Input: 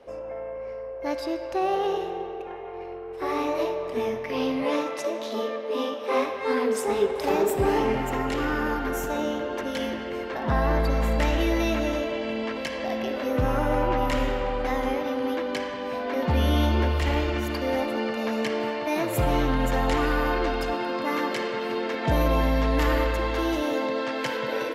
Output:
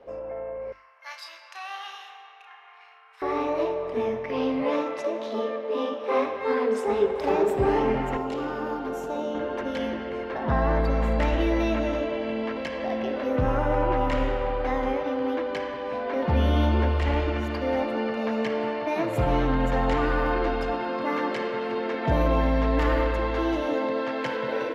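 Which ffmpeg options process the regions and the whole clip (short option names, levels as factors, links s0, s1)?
-filter_complex "[0:a]asettb=1/sr,asplit=3[s0][s1][s2];[s0]atrim=end=0.724[s3];[s1]atrim=start=0.72:end=3.22,asetpts=PTS-STARTPTS,afade=t=in:d=0.004:c=qsin,afade=t=out:st=2.496:d=0.004:c=qsin,highpass=f=1200:w=0.5412,highpass=f=1200:w=1.3066,highshelf=f=4400:g=9.5,asplit=2[s4][s5];[s5]adelay=33,volume=0.531[s6];[s4][s6]amix=inputs=2:normalize=0,atrim=end_sample=110250[s7];[s2]atrim=start=3.216[s8];[s3][s7]acrossfade=d=0.004:c1=hsin:c2=qsin[s9];[s9][s8]acrossfade=d=0.004:c1=qsin:c2=hsin,asettb=1/sr,asplit=3[s10][s11][s12];[s10]atrim=end=8.174[s13];[s11]atrim=start=8.17:end=9.35,asetpts=PTS-STARTPTS,afade=t=in:d=0.004:c=qsin,afade=t=out:st=1.176:d=0.004:c=qsin,highpass=f=260:p=1,equalizer=f=1800:t=o:w=0.92:g=-11[s14];[s12]atrim=start=9.346[s15];[s13][s14]acrossfade=d=0.004:c1=hsin:c2=qsin[s16];[s16][s15]acrossfade=d=0.004:c1=qsin:c2=hsin,aemphasis=mode=reproduction:type=75fm,bandreject=f=50:t=h:w=6,bandreject=f=100:t=h:w=6,bandreject=f=150:t=h:w=6,bandreject=f=200:t=h:w=6,bandreject=f=250:t=h:w=6,bandreject=f=300:t=h:w=6,bandreject=f=350:t=h:w=6"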